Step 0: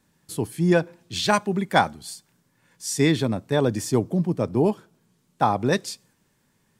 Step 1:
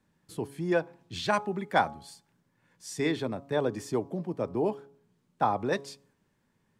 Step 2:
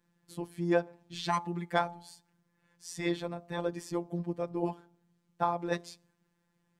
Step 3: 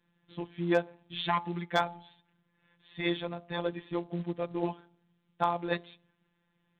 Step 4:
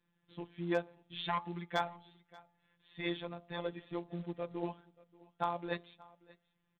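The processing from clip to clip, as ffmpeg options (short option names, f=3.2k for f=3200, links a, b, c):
-filter_complex "[0:a]highshelf=f=4k:g=-11,bandreject=f=139.3:t=h:w=4,bandreject=f=278.6:t=h:w=4,bandreject=f=417.9:t=h:w=4,bandreject=f=557.2:t=h:w=4,bandreject=f=696.5:t=h:w=4,bandreject=f=835.8:t=h:w=4,bandreject=f=975.1:t=h:w=4,bandreject=f=1.1144k:t=h:w=4,bandreject=f=1.2537k:t=h:w=4,acrossover=split=310[a][b];[a]acompressor=threshold=-32dB:ratio=6[c];[c][b]amix=inputs=2:normalize=0,volume=-4.5dB"
-af "afftfilt=real='hypot(re,im)*cos(PI*b)':imag='0':win_size=1024:overlap=0.75"
-af "crystalizer=i=3.5:c=0,aresample=8000,acrusher=bits=6:mode=log:mix=0:aa=0.000001,aresample=44100,asoftclip=type=hard:threshold=-12.5dB"
-af "flanger=delay=0.8:depth=1.4:regen=88:speed=1.2:shape=sinusoidal,aecho=1:1:582:0.0708,volume=-1.5dB"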